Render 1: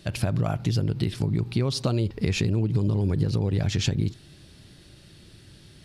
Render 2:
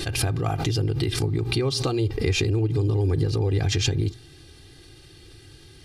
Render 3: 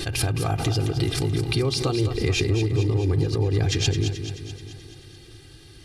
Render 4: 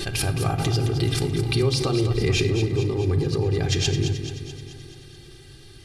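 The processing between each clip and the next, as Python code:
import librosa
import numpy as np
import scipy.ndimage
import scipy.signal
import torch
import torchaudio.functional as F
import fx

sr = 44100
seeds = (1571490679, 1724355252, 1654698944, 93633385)

y1 = fx.hum_notches(x, sr, base_hz=60, count=2)
y1 = y1 + 0.88 * np.pad(y1, (int(2.5 * sr / 1000.0), 0))[:len(y1)]
y1 = fx.pre_swell(y1, sr, db_per_s=64.0)
y2 = fx.echo_feedback(y1, sr, ms=216, feedback_pct=59, wet_db=-9.0)
y3 = fx.room_shoebox(y2, sr, seeds[0], volume_m3=2700.0, walls='furnished', distance_m=1.2)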